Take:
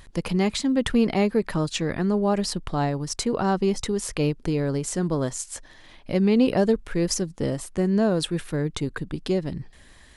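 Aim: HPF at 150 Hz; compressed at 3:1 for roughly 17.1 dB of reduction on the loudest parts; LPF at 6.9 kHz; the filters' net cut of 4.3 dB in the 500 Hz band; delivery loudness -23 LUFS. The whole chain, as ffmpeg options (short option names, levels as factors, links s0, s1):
-af "highpass=150,lowpass=6900,equalizer=f=500:t=o:g=-5.5,acompressor=threshold=0.00794:ratio=3,volume=7.94"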